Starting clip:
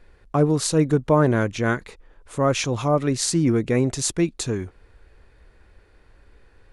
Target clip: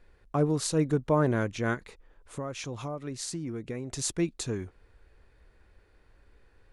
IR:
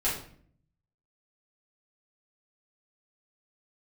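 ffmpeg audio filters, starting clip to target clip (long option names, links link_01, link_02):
-filter_complex "[0:a]asettb=1/sr,asplit=3[link_01][link_02][link_03];[link_01]atrim=end=1.744[link_04];[link_02]atrim=start=1.74:end=3.92,asetpts=PTS-STARTPTS,afade=type=in:duration=0.004:curve=qsin,afade=type=out:start_time=2.176:duration=0.004:curve=qsin,acompressor=threshold=-26dB:ratio=6[link_05];[link_03]atrim=start=3.916[link_06];[link_04][link_05]acrossfade=duration=0.004:curve1=hsin:curve2=qsin[link_07];[link_07][link_06]acrossfade=duration=0.004:curve1=qsin:curve2=hsin,volume=-7dB"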